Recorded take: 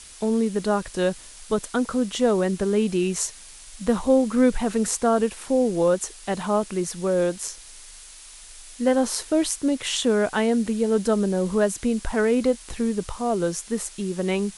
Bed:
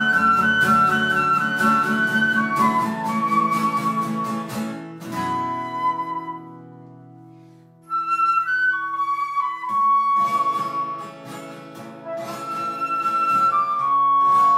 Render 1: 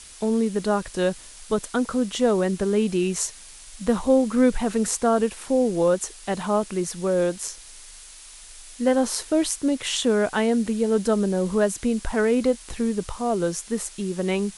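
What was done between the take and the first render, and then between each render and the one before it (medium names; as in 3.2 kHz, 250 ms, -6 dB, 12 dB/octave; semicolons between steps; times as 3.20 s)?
no audible change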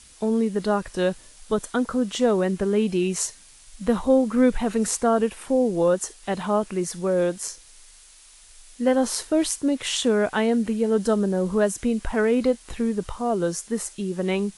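noise print and reduce 6 dB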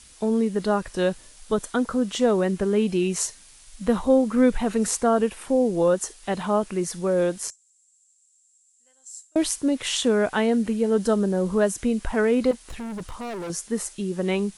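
7.50–9.36 s: band-pass filter 7.5 kHz, Q 16; 12.51–13.50 s: overload inside the chain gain 30.5 dB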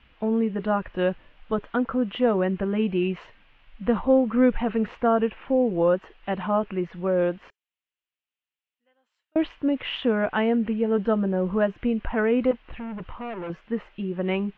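elliptic low-pass 2.9 kHz, stop band 80 dB; band-stop 410 Hz, Q 12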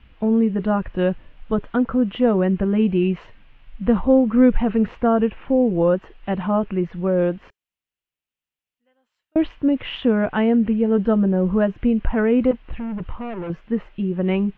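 bass shelf 290 Hz +10.5 dB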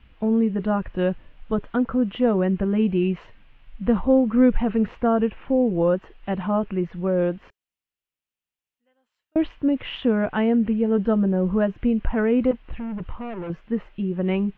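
trim -2.5 dB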